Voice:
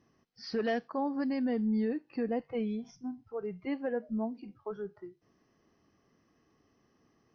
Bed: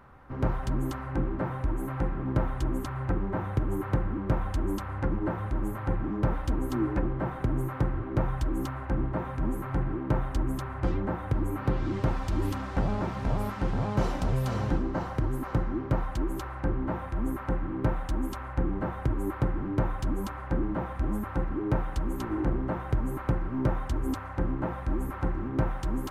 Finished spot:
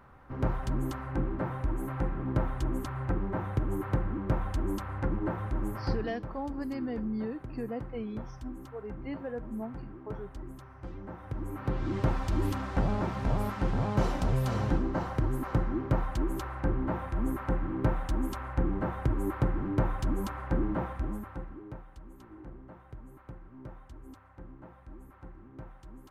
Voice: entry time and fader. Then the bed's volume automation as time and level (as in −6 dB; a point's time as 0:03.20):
5.40 s, −4.0 dB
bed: 0:05.93 −2 dB
0:06.21 −14.5 dB
0:10.90 −14.5 dB
0:12.00 −0.5 dB
0:20.83 −0.5 dB
0:21.85 −19 dB